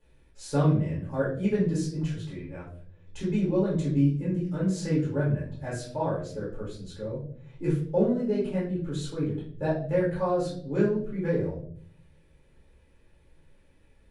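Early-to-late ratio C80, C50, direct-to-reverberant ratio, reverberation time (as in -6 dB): 9.5 dB, 4.5 dB, -8.0 dB, 0.60 s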